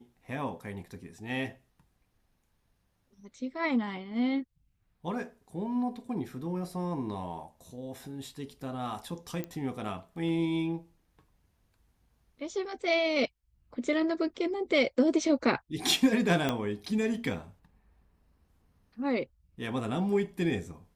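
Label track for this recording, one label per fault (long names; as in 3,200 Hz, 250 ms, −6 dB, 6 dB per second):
9.440000	9.440000	click −22 dBFS
16.490000	16.490000	click −14 dBFS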